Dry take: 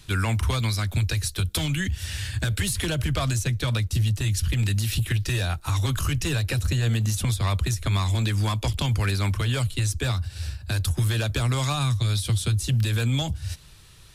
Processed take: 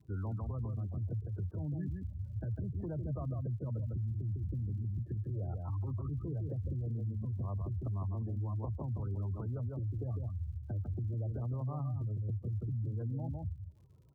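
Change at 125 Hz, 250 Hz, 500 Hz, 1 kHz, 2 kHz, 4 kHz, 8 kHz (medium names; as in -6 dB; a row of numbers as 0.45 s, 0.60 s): -12.0 dB, -11.5 dB, -12.0 dB, -18.5 dB, under -35 dB, under -40 dB, under -40 dB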